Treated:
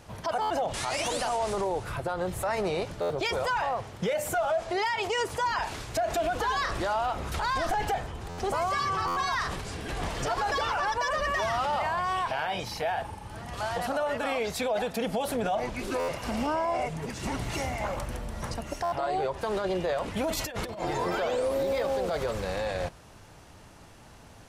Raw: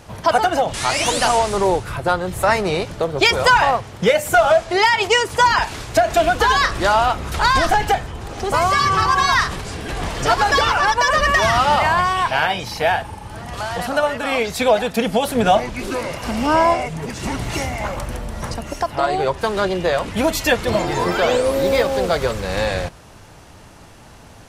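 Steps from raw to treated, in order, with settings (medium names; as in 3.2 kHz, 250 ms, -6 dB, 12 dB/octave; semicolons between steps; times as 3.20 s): dynamic bell 650 Hz, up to +5 dB, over -28 dBFS, Q 0.92; peak limiter -13 dBFS, peak gain reduction 13 dB; 20.29–20.82 s: compressor with a negative ratio -25 dBFS, ratio -0.5; buffer glitch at 0.41/3.01/8.29/9.07/15.99/18.83 s, samples 512, times 7; trim -8 dB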